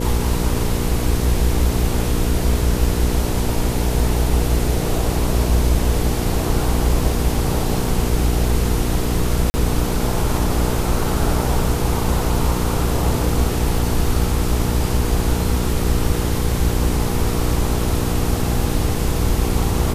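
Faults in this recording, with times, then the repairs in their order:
mains hum 60 Hz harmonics 8 −23 dBFS
0:09.50–0:09.54: drop-out 40 ms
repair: hum removal 60 Hz, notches 8
repair the gap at 0:09.50, 40 ms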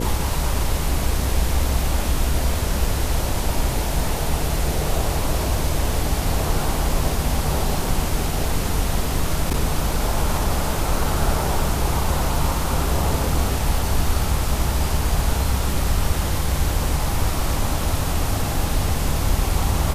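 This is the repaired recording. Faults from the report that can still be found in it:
none of them is left

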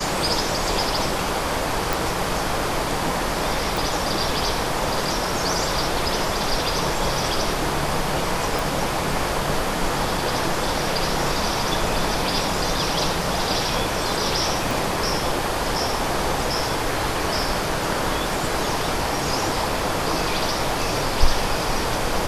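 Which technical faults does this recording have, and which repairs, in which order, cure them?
0:01.93: click
0:03.77: click
0:08.59: click
0:14.71: click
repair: click removal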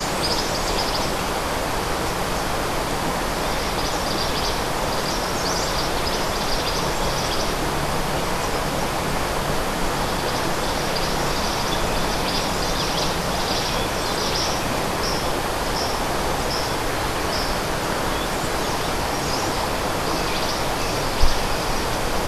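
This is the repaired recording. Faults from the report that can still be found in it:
0:14.71: click

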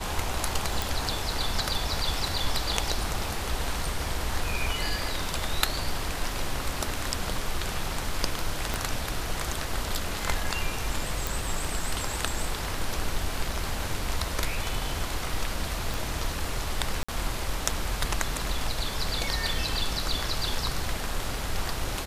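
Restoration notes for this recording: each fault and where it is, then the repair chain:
0:00.82: click
0:08.74: click −12 dBFS
0:11.27: click
0:15.94: click
0:17.03–0:17.09: drop-out 55 ms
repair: click removal
repair the gap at 0:17.03, 55 ms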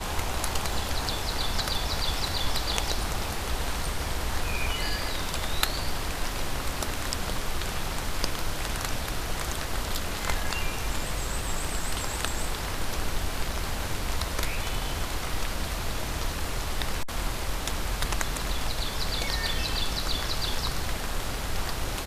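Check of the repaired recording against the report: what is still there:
0:08.74: click
0:15.94: click

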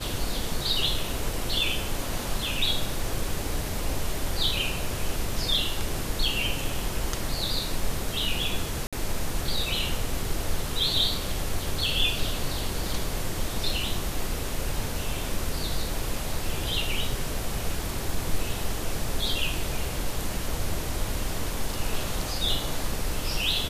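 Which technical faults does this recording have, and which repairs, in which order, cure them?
0:08.87–0:08.93: drop-out 56 ms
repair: repair the gap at 0:08.87, 56 ms

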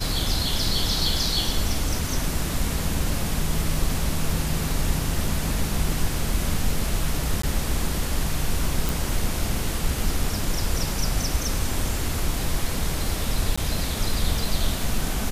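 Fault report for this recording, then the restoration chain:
0:07.42–0:07.43: drop-out 14 ms
0:08.89: click
0:13.56–0:13.57: drop-out 15 ms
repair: click removal
repair the gap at 0:07.42, 14 ms
repair the gap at 0:13.56, 15 ms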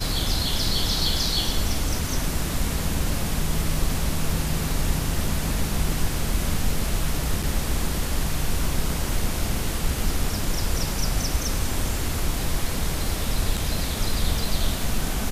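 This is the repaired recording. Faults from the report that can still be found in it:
none of them is left

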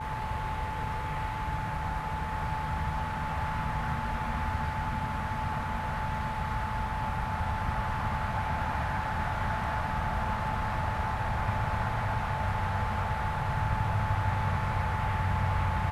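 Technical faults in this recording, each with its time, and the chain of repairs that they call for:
whistle 870 Hz −35 dBFS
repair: notch filter 870 Hz, Q 30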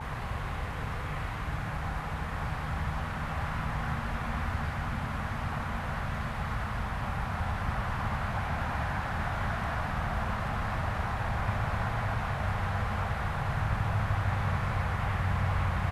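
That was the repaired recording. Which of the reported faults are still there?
none of them is left

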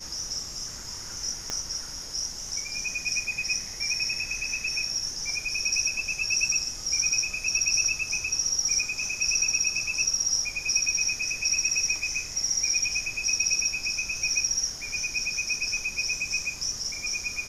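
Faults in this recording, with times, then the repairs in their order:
0:01.50: click −16 dBFS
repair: click removal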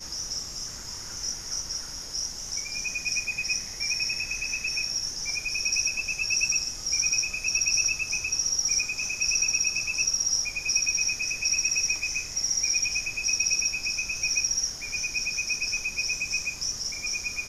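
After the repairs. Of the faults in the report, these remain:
0:01.50: click

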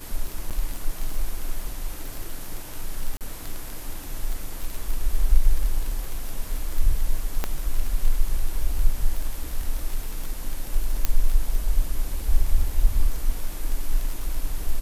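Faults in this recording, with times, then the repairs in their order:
surface crackle 25 per second −26 dBFS
0:00.50–0:00.51: drop-out 7.4 ms
0:03.17–0:03.21: drop-out 38 ms
0:07.44: click −10 dBFS
0:11.05: click −6 dBFS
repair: click removal
repair the gap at 0:00.50, 7.4 ms
repair the gap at 0:03.17, 38 ms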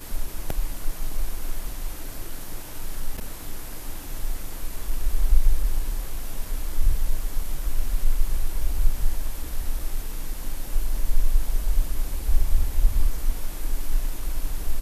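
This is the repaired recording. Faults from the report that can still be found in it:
none of them is left

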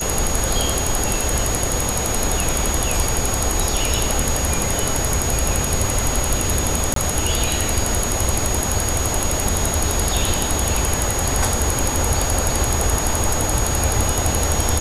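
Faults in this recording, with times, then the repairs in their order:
whistle 6,700 Hz −25 dBFS
0:06.94–0:06.96: drop-out 23 ms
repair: notch filter 6,700 Hz, Q 30
repair the gap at 0:06.94, 23 ms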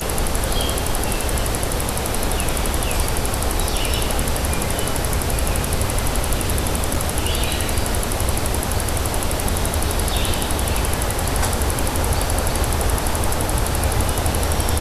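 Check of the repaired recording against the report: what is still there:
none of them is left

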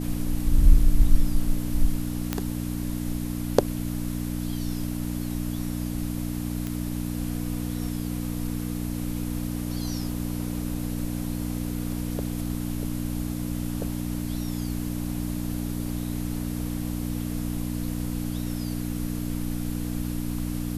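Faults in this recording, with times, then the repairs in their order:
mains hum 60 Hz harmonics 5 −30 dBFS
0:02.33: click −10 dBFS
0:06.67: click −17 dBFS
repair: click removal
hum removal 60 Hz, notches 5

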